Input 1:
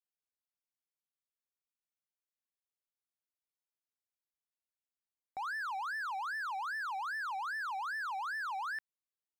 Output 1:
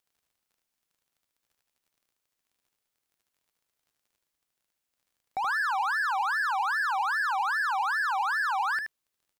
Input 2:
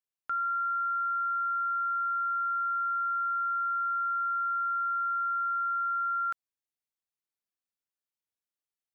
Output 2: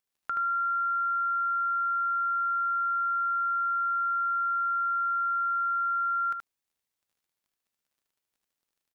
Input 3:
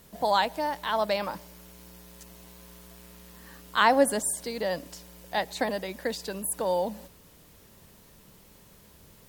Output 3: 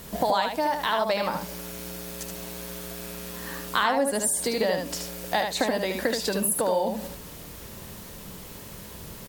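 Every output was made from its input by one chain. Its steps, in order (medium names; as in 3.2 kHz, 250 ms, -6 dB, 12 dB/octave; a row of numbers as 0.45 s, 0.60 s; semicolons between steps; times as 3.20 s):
compression 4:1, threshold -36 dBFS; crackle 29 per s -68 dBFS; on a send: delay 76 ms -5 dB; on the sum: normalise loudness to -27 LUFS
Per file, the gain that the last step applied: +10.5 dB, +5.5 dB, +12.0 dB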